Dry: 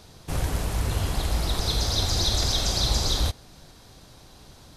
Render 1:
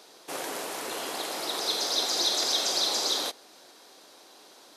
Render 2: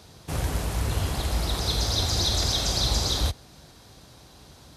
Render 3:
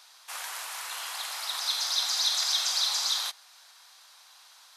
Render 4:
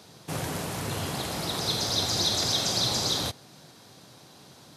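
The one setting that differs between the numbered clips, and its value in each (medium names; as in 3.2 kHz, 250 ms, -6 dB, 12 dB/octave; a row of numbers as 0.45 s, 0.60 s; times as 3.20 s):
high-pass, cutoff frequency: 320 Hz, 45 Hz, 960 Hz, 120 Hz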